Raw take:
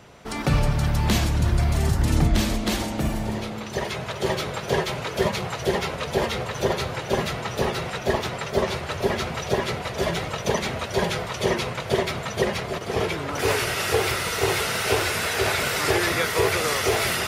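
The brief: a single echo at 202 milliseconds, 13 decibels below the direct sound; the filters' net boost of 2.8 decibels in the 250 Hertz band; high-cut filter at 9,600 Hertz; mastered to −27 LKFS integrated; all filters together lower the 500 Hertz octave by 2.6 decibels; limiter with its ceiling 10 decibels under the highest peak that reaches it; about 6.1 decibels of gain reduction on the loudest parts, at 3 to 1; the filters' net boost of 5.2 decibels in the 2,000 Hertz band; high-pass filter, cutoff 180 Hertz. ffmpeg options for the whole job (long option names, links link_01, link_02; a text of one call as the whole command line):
ffmpeg -i in.wav -af "highpass=180,lowpass=9600,equalizer=frequency=250:width_type=o:gain=8,equalizer=frequency=500:width_type=o:gain=-6.5,equalizer=frequency=2000:width_type=o:gain=6.5,acompressor=threshold=-25dB:ratio=3,alimiter=limit=-22.5dB:level=0:latency=1,aecho=1:1:202:0.224,volume=3.5dB" out.wav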